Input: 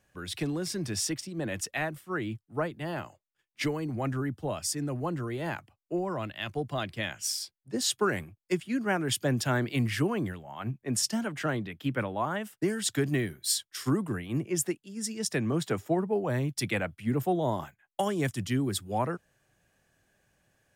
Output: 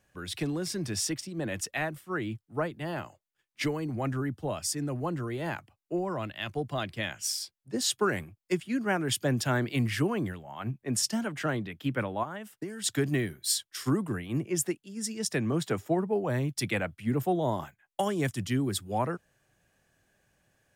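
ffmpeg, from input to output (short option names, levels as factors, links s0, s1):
-filter_complex "[0:a]asettb=1/sr,asplit=3[s0][s1][s2];[s0]atrim=end=12.234[s3];[s1]atrim=start=12.23:end=12.84,asetpts=PTS-STARTPTS,afade=t=in:d=0.004:c=qsin,afade=t=out:st=0.606:d=0.004:c=qsin,acompressor=threshold=0.0158:ratio=4[s4];[s2]atrim=start=12.836[s5];[s3][s4]acrossfade=d=0.004:c1=hsin:c2=qsin[s6];[s6][s5]acrossfade=d=0.004:c1=qsin:c2=hsin"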